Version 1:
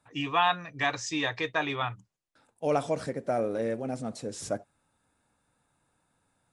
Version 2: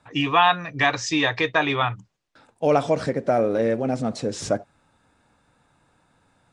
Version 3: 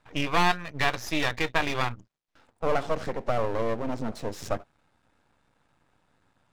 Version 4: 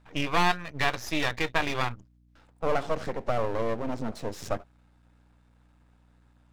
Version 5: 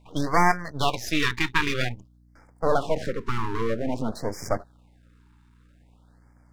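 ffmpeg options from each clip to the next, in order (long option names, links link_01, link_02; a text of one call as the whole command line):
ffmpeg -i in.wav -filter_complex "[0:a]asplit=2[link_01][link_02];[link_02]acompressor=threshold=-33dB:ratio=6,volume=-1dB[link_03];[link_01][link_03]amix=inputs=2:normalize=0,lowpass=5900,volume=5.5dB" out.wav
ffmpeg -i in.wav -af "highshelf=frequency=6000:gain=-7,aeval=exprs='max(val(0),0)':channel_layout=same,volume=-1.5dB" out.wav
ffmpeg -i in.wav -af "aeval=exprs='val(0)+0.00112*(sin(2*PI*60*n/s)+sin(2*PI*2*60*n/s)/2+sin(2*PI*3*60*n/s)/3+sin(2*PI*4*60*n/s)/4+sin(2*PI*5*60*n/s)/5)':channel_layout=same,volume=-1dB" out.wav
ffmpeg -i in.wav -af "afftfilt=real='re*(1-between(b*sr/1024,570*pow(3400/570,0.5+0.5*sin(2*PI*0.51*pts/sr))/1.41,570*pow(3400/570,0.5+0.5*sin(2*PI*0.51*pts/sr))*1.41))':imag='im*(1-between(b*sr/1024,570*pow(3400/570,0.5+0.5*sin(2*PI*0.51*pts/sr))/1.41,570*pow(3400/570,0.5+0.5*sin(2*PI*0.51*pts/sr))*1.41))':win_size=1024:overlap=0.75,volume=4.5dB" out.wav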